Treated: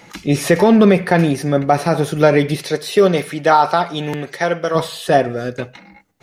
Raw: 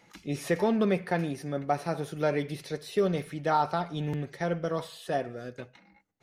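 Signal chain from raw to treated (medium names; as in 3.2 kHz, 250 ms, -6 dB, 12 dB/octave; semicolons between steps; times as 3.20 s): 2.55–4.74 s: high-pass 220 Hz -> 770 Hz 6 dB/octave; loudness maximiser +17.5 dB; trim -1 dB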